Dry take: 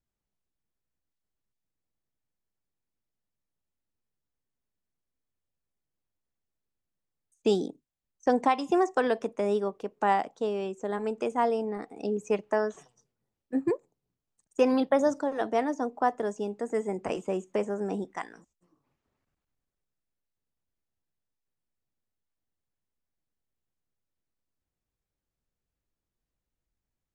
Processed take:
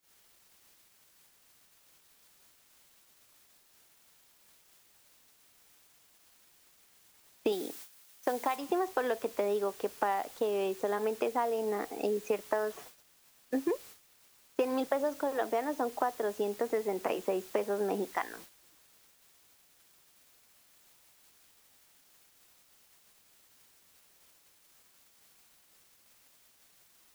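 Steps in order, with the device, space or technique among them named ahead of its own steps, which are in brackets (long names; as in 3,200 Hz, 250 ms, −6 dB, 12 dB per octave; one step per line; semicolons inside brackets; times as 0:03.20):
baby monitor (band-pass filter 330–4,100 Hz; downward compressor 8 to 1, threshold −34 dBFS, peak gain reduction 15.5 dB; white noise bed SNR 15 dB; noise gate −56 dBFS, range −26 dB)
0:07.52–0:08.56: spectral tilt +1.5 dB per octave
level +6.5 dB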